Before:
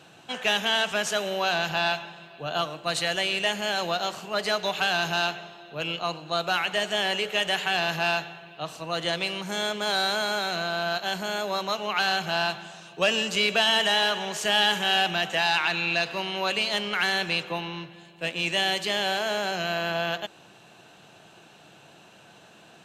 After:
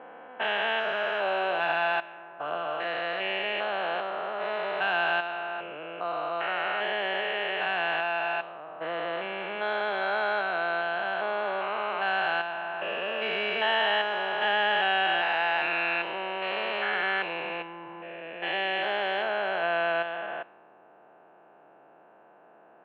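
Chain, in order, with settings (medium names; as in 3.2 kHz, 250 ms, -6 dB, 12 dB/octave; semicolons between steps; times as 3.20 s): spectrogram pixelated in time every 400 ms; high-pass 440 Hz 12 dB/octave; level-controlled noise filter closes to 930 Hz, open at -23.5 dBFS; low-pass 2.5 kHz 24 dB/octave; 0.87–2.88 s: phaser 1.2 Hz, delay 3.8 ms, feedback 20%; trim +3.5 dB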